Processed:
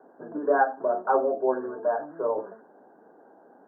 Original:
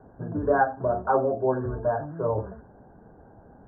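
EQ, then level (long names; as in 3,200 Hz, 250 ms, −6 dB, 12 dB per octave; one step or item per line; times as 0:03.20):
high-pass filter 280 Hz 24 dB per octave
0.0 dB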